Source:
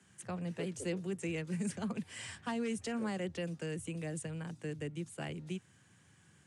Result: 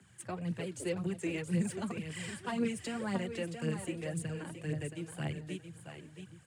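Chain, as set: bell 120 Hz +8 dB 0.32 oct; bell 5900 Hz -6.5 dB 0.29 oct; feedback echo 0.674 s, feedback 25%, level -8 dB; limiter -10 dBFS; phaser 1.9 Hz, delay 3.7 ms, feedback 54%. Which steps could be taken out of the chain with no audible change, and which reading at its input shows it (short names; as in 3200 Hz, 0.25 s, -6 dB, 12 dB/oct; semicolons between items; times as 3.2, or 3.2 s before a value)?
limiter -10 dBFS: input peak -24.0 dBFS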